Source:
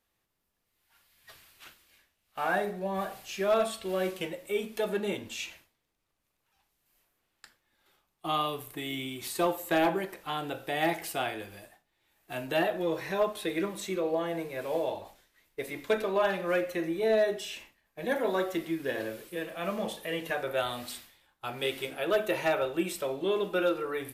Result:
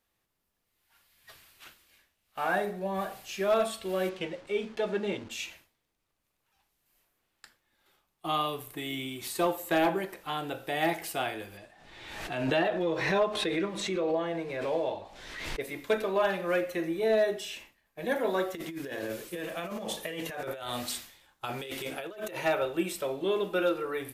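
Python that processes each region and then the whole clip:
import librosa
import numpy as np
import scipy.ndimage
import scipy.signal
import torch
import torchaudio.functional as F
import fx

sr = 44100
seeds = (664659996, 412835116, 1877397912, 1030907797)

y = fx.chain(x, sr, fx.delta_hold(step_db=-47.0),
    fx.lowpass(hz=4900.0, slope=12), at=(4.09, 5.31))
y = fx.chain(y, sr, fx.lowpass(hz=5600.0, slope=12),
    fx.pre_swell(db_per_s=42.0), at=(11.57, 15.61))
y = fx.chain(y, sr, fx.peak_eq(hz=6500.0, db=4.5, octaves=0.7),
    fx.over_compress(threshold_db=-37.0, ratio=-1.0), at=(18.55, 22.37))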